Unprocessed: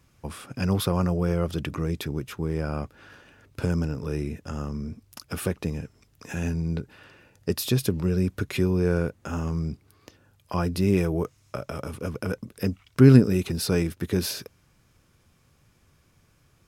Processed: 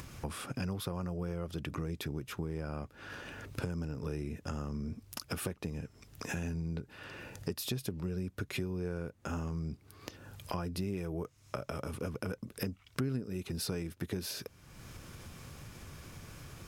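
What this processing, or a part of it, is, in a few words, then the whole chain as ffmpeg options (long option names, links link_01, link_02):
upward and downward compression: -af "acompressor=mode=upward:threshold=-39dB:ratio=2.5,acompressor=threshold=-37dB:ratio=5,volume=2dB"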